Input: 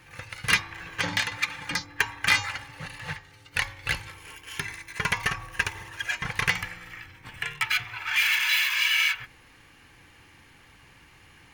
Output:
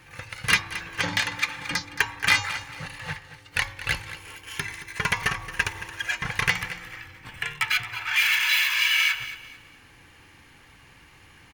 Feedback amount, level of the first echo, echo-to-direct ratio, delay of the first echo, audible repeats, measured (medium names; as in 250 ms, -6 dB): 31%, -14.0 dB, -13.5 dB, 223 ms, 3